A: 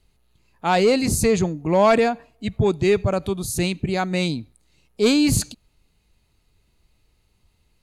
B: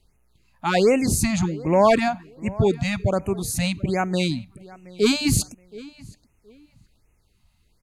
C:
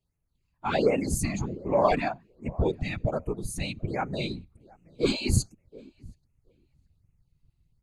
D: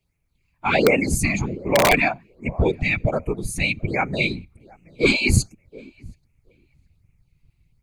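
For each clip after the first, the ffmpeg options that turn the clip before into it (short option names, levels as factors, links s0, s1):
-filter_complex "[0:a]asplit=2[s0][s1];[s1]adelay=722,lowpass=f=3200:p=1,volume=0.0944,asplit=2[s2][s3];[s3]adelay=722,lowpass=f=3200:p=1,volume=0.23[s4];[s0][s2][s4]amix=inputs=3:normalize=0,afftfilt=real='re*(1-between(b*sr/1024,350*pow(4200/350,0.5+0.5*sin(2*PI*1.3*pts/sr))/1.41,350*pow(4200/350,0.5+0.5*sin(2*PI*1.3*pts/sr))*1.41))':imag='im*(1-between(b*sr/1024,350*pow(4200/350,0.5+0.5*sin(2*PI*1.3*pts/sr))/1.41,350*pow(4200/350,0.5+0.5*sin(2*PI*1.3*pts/sr))*1.41))':win_size=1024:overlap=0.75"
-af "afftdn=nr=12:nf=-30,asubboost=boost=10.5:cutoff=54,afftfilt=real='hypot(re,im)*cos(2*PI*random(0))':imag='hypot(re,im)*sin(2*PI*random(1))':win_size=512:overlap=0.75"
-filter_complex "[0:a]equalizer=f=2300:t=o:w=0.36:g=14,acrossover=split=410|1400[s0][s1][s2];[s1]aeval=exprs='(mod(7.08*val(0)+1,2)-1)/7.08':c=same[s3];[s0][s3][s2]amix=inputs=3:normalize=0,volume=2"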